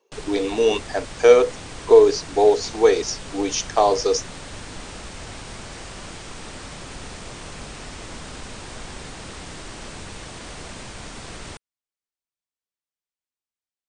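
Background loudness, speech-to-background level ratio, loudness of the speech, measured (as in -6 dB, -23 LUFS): -36.5 LUFS, 18.0 dB, -18.5 LUFS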